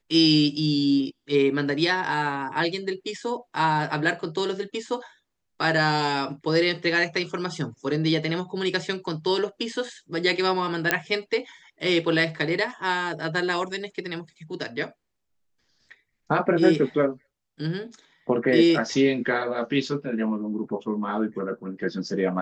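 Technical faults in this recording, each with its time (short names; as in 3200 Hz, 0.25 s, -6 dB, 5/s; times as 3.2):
10.91 pop -4 dBFS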